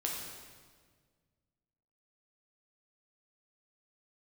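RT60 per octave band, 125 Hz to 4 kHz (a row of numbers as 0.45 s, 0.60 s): 2.4 s, 2.1 s, 1.8 s, 1.5 s, 1.4 s, 1.4 s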